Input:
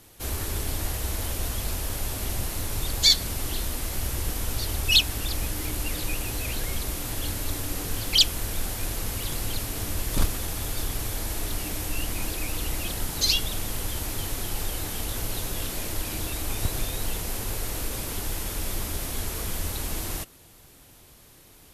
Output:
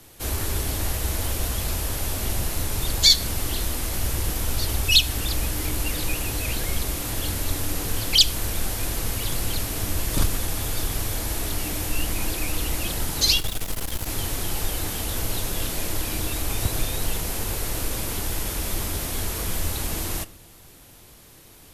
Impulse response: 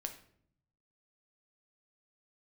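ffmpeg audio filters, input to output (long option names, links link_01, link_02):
-filter_complex "[0:a]acrossover=split=150|3000[link_01][link_02][link_03];[link_02]acompressor=threshold=-28dB:ratio=6[link_04];[link_01][link_04][link_03]amix=inputs=3:normalize=0,asettb=1/sr,asplit=3[link_05][link_06][link_07];[link_05]atrim=end=13.404[link_08];[link_06]atrim=start=13.4:end=14.07,asetpts=PTS-STARTPTS,afade=type=in:duration=0.004:curve=qsin,afade=type=out:start_time=0.666:duration=0.004:curve=qsin,aeval=exprs='clip(val(0),-1,0.01)':channel_layout=same[link_09];[link_07]atrim=start=14.066[link_10];[link_08][link_09]acrossfade=duration=0.004:curve1=hsin:curve2=qsin[link_11];[link_11][link_10]acrossfade=duration=0.004:curve1=qsin:curve2=hsin,asplit=2[link_12][link_13];[1:a]atrim=start_sample=2205,asetrate=48510,aresample=44100[link_14];[link_13][link_14]afir=irnorm=-1:irlink=0,volume=-3dB[link_15];[link_12][link_15]amix=inputs=2:normalize=0"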